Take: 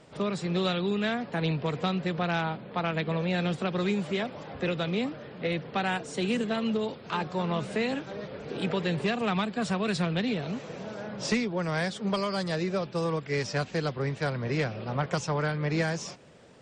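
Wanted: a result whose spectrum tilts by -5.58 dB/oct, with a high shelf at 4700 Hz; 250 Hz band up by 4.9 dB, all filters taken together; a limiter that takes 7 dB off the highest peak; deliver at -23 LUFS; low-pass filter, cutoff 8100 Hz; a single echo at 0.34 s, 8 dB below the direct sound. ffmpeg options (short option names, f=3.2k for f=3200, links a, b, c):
-af "lowpass=8.1k,equalizer=f=250:t=o:g=7,highshelf=f=4.7k:g=3.5,alimiter=limit=-19.5dB:level=0:latency=1,aecho=1:1:340:0.398,volume=5.5dB"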